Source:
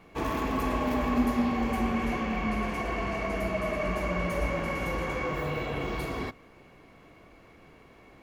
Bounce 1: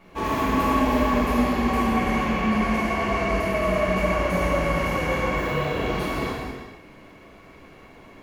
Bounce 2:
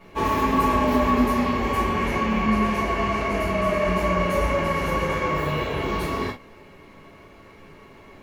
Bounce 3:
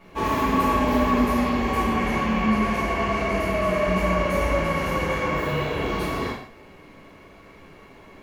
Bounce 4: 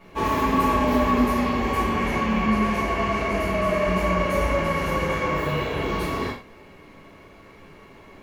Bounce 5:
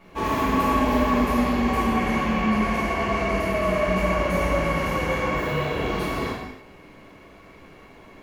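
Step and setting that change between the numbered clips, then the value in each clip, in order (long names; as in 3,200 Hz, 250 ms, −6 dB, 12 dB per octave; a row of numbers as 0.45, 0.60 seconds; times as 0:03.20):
reverb whose tail is shaped and stops, gate: 530, 90, 210, 140, 340 milliseconds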